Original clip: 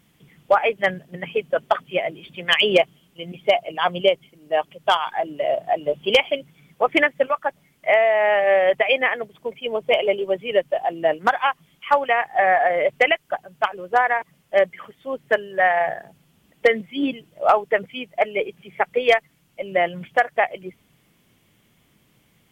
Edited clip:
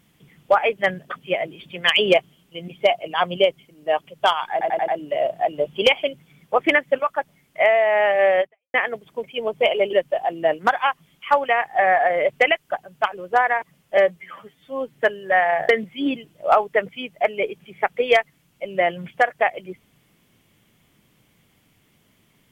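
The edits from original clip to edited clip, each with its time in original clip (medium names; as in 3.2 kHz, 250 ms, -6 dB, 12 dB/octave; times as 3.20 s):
1.10–1.74 s: delete
5.16 s: stutter 0.09 s, 5 plays
8.68–9.02 s: fade out exponential
10.21–10.53 s: delete
14.57–15.21 s: stretch 1.5×
15.97–16.66 s: delete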